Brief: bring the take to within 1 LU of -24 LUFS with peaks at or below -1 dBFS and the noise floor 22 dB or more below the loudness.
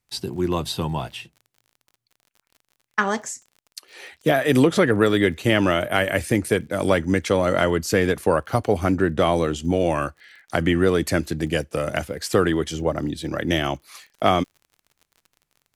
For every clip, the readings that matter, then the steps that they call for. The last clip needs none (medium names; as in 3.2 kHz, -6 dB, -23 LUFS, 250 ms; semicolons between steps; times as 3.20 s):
tick rate 40 per s; loudness -22.0 LUFS; peak level -4.0 dBFS; loudness target -24.0 LUFS
-> de-click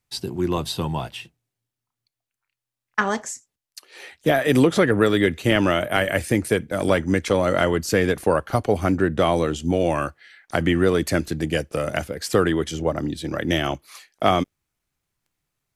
tick rate 0.063 per s; loudness -22.0 LUFS; peak level -4.0 dBFS; loudness target -24.0 LUFS
-> trim -2 dB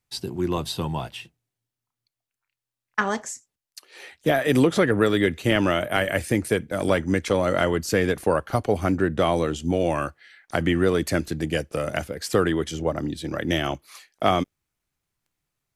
loudness -24.0 LUFS; peak level -6.0 dBFS; noise floor -88 dBFS